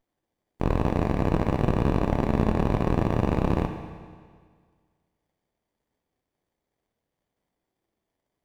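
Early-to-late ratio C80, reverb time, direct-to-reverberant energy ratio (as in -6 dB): 8.0 dB, 1.8 s, 5.5 dB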